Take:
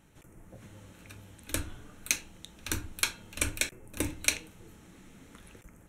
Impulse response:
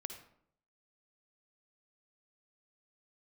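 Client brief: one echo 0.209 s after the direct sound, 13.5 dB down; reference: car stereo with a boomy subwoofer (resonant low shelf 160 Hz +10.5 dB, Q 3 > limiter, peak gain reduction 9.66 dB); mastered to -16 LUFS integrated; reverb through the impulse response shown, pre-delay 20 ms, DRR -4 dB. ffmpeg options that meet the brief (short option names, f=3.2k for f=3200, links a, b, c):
-filter_complex "[0:a]aecho=1:1:209:0.211,asplit=2[a][b];[1:a]atrim=start_sample=2205,adelay=20[c];[b][c]afir=irnorm=-1:irlink=0,volume=6.5dB[d];[a][d]amix=inputs=2:normalize=0,lowshelf=f=160:t=q:w=3:g=10.5,volume=11.5dB,alimiter=limit=-2.5dB:level=0:latency=1"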